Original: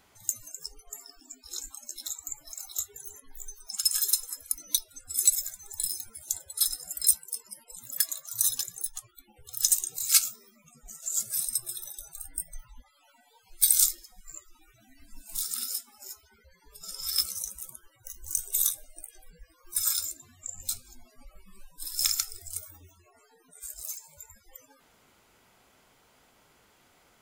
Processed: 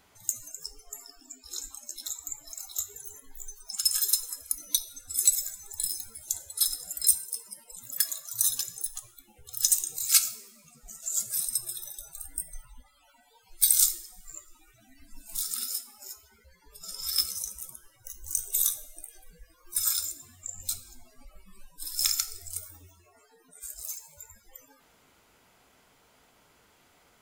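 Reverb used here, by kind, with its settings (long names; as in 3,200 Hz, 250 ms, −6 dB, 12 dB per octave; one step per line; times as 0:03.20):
coupled-rooms reverb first 0.67 s, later 2.4 s, from −21 dB, DRR 12 dB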